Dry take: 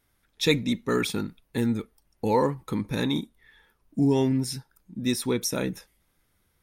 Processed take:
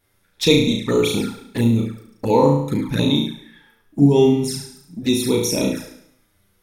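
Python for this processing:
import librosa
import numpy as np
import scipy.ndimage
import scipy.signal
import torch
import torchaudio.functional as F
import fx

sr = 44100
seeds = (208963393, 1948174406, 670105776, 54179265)

y = fx.room_flutter(x, sr, wall_m=6.0, rt60_s=0.68)
y = fx.env_flanger(y, sr, rest_ms=10.7, full_db=-21.5)
y = y * librosa.db_to_amplitude(7.0)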